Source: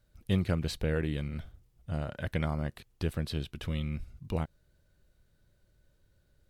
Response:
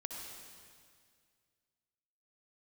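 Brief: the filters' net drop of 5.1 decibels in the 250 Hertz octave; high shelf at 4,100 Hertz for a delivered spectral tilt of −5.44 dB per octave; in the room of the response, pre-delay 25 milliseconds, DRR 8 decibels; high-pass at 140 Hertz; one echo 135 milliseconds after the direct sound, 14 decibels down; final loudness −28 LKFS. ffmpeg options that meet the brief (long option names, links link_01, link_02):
-filter_complex "[0:a]highpass=140,equalizer=frequency=250:width_type=o:gain=-6.5,highshelf=frequency=4100:gain=-5.5,aecho=1:1:135:0.2,asplit=2[link_01][link_02];[1:a]atrim=start_sample=2205,adelay=25[link_03];[link_02][link_03]afir=irnorm=-1:irlink=0,volume=-7dB[link_04];[link_01][link_04]amix=inputs=2:normalize=0,volume=10dB"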